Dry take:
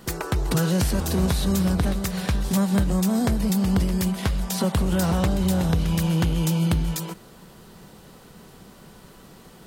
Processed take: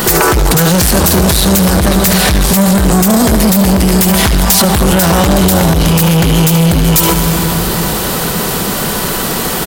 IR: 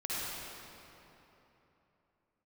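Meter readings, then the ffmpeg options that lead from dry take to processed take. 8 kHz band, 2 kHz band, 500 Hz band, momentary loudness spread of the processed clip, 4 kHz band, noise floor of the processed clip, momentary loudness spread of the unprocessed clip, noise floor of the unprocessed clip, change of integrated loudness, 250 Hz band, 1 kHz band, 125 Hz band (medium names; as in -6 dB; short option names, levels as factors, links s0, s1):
+20.5 dB, +18.5 dB, +16.5 dB, 5 LU, +19.0 dB, -16 dBFS, 5 LU, -48 dBFS, +13.5 dB, +12.5 dB, +18.5 dB, +12.0 dB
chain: -filter_complex "[0:a]highshelf=f=11000:g=10.5,aecho=1:1:73:0.188,asplit=2[s0][s1];[1:a]atrim=start_sample=2205[s2];[s1][s2]afir=irnorm=-1:irlink=0,volume=0.133[s3];[s0][s3]amix=inputs=2:normalize=0,acompressor=threshold=0.0251:ratio=2.5,asoftclip=type=tanh:threshold=0.0237,lowshelf=f=330:g=-7,alimiter=level_in=50.1:limit=0.891:release=50:level=0:latency=1,volume=0.891"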